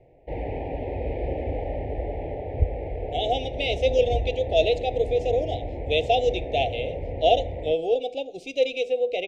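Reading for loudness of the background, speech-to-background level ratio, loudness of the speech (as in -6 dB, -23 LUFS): -32.0 LUFS, 7.0 dB, -25.0 LUFS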